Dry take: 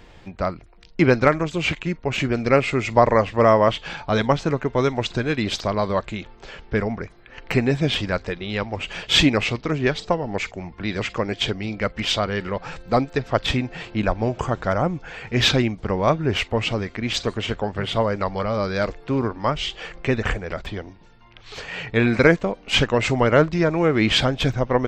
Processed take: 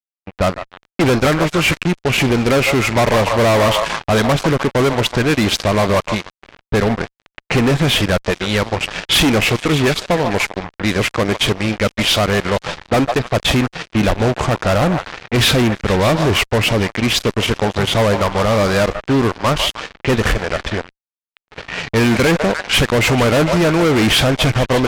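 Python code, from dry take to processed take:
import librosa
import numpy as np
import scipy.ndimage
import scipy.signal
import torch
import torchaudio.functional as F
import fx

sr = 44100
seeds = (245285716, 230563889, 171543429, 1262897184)

y = fx.echo_stepped(x, sr, ms=149, hz=780.0, octaves=0.7, feedback_pct=70, wet_db=-9)
y = fx.fuzz(y, sr, gain_db=25.0, gate_db=-32.0)
y = fx.env_lowpass(y, sr, base_hz=2200.0, full_db=-14.5)
y = y * librosa.db_to_amplitude(2.5)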